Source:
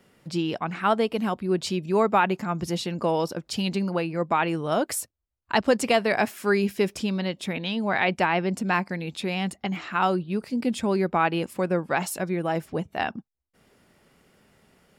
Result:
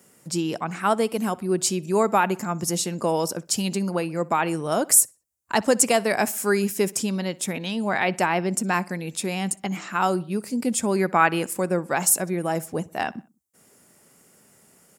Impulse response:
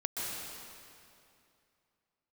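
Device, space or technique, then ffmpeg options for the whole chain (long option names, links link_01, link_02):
budget condenser microphone: -filter_complex "[0:a]highpass=110,highshelf=frequency=5300:width_type=q:width=1.5:gain=12,asettb=1/sr,asplit=3[link_01][link_02][link_03];[link_01]atrim=end=10.964[link_04];[link_02]atrim=start=10.96:end=11.54,asetpts=PTS-STARTPTS,afade=type=in:duration=0.004:curve=qsin,afade=type=out:start_time=0.576:duration=0.004:curve=qsin,equalizer=frequency=1700:width_type=o:width=1.5:gain=7[link_05];[link_03]atrim=start=11.536[link_06];[link_04][link_05]acrossfade=duration=0.004:curve1=hsin:curve2=qsin[link_07];[link_07][link_06]acrossfade=duration=0.004:curve1=qsin:curve2=hsin,asplit=2[link_08][link_09];[link_09]adelay=62,lowpass=frequency=4300:poles=1,volume=-22.5dB,asplit=2[link_10][link_11];[link_11]adelay=62,lowpass=frequency=4300:poles=1,volume=0.49,asplit=2[link_12][link_13];[link_13]adelay=62,lowpass=frequency=4300:poles=1,volume=0.49[link_14];[link_08][link_10][link_12][link_14]amix=inputs=4:normalize=0,volume=1dB"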